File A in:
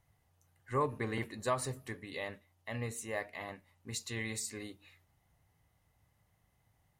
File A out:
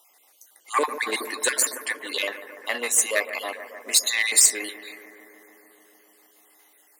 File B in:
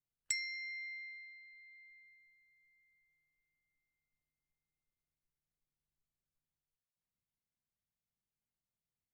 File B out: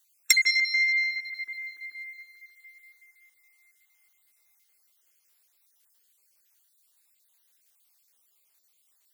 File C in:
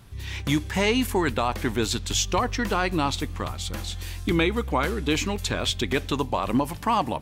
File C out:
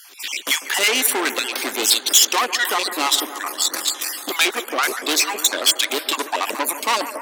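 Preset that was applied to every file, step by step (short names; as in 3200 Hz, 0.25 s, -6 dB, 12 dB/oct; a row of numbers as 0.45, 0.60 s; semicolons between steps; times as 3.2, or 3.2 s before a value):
random spectral dropouts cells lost 43%; tube stage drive 27 dB, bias 0.6; steep high-pass 270 Hz 36 dB/oct; tilt +3.5 dB/oct; analogue delay 0.146 s, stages 2048, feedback 81%, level -12.5 dB; normalise peaks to -1.5 dBFS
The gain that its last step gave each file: +18.5, +21.5, +12.0 dB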